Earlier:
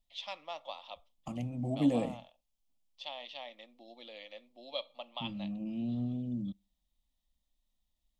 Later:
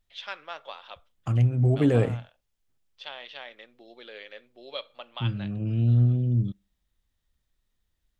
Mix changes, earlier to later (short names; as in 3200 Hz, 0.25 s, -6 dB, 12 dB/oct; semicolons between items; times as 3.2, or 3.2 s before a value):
second voice +3.5 dB; master: remove fixed phaser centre 410 Hz, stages 6